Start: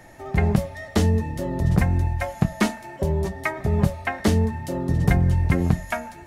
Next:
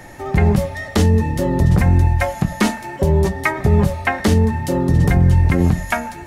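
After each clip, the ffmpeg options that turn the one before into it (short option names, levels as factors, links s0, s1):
-af "bandreject=f=650:w=12,alimiter=level_in=4.73:limit=0.891:release=50:level=0:latency=1,volume=0.596"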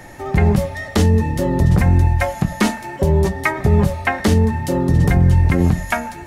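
-af anull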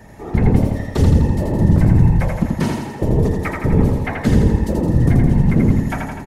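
-filter_complex "[0:a]lowshelf=f=450:g=9,afftfilt=real='hypot(re,im)*cos(2*PI*random(0))':imag='hypot(re,im)*sin(2*PI*random(1))':win_size=512:overlap=0.75,asplit=2[s0][s1];[s1]aecho=0:1:83|166|249|332|415|498|581|664:0.668|0.394|0.233|0.137|0.081|0.0478|0.0282|0.0166[s2];[s0][s2]amix=inputs=2:normalize=0,volume=0.708"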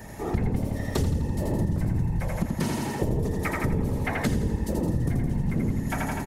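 -af "highshelf=f=5400:g=9.5,acompressor=threshold=0.0708:ratio=6"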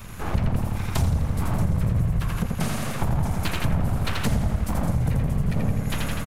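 -filter_complex "[0:a]acrossover=split=230|5700[s0][s1][s2];[s1]aeval=exprs='abs(val(0))':c=same[s3];[s2]aecho=1:1:631:0.299[s4];[s0][s3][s4]amix=inputs=3:normalize=0,volume=1.58"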